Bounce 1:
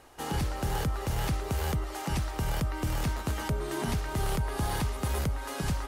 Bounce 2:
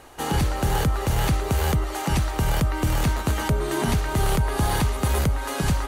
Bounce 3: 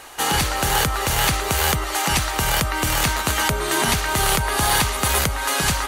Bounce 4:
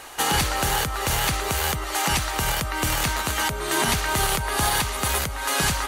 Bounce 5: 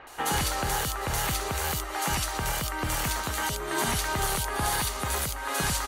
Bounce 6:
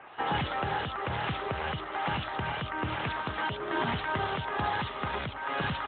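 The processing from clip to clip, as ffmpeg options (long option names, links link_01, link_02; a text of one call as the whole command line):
ffmpeg -i in.wav -af "bandreject=frequency=5200:width=13,volume=8dB" out.wav
ffmpeg -i in.wav -af "tiltshelf=frequency=670:gain=-7.5,volume=4dB" out.wav
ffmpeg -i in.wav -af "alimiter=limit=-10dB:level=0:latency=1:release=418" out.wav
ffmpeg -i in.wav -filter_complex "[0:a]acrossover=split=2800[link_01][link_02];[link_02]adelay=70[link_03];[link_01][link_03]amix=inputs=2:normalize=0,volume=-4.5dB" out.wav
ffmpeg -i in.wav -ar 8000 -c:a libopencore_amrnb -b:a 12200 out.amr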